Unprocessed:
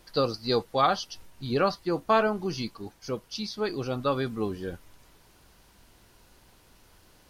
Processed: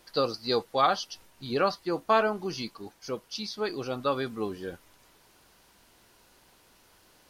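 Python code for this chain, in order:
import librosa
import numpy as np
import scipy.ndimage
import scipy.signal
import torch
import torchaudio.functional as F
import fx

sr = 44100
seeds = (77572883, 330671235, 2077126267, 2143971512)

y = fx.low_shelf(x, sr, hz=160.0, db=-11.5)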